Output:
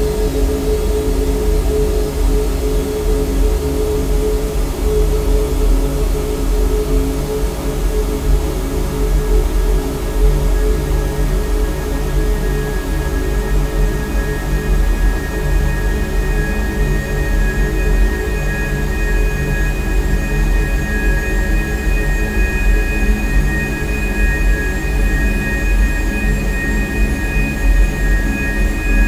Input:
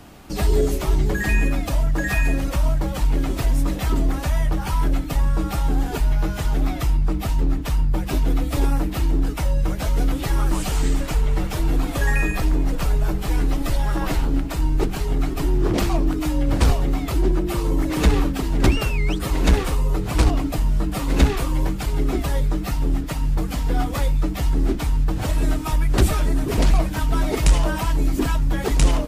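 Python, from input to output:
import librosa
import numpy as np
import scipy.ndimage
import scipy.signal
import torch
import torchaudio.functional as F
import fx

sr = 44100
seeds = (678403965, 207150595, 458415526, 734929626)

y = fx.quant_float(x, sr, bits=6)
y = fx.paulstretch(y, sr, seeds[0], factor=37.0, window_s=1.0, from_s=0.59)
y = F.gain(torch.from_numpy(y), 3.5).numpy()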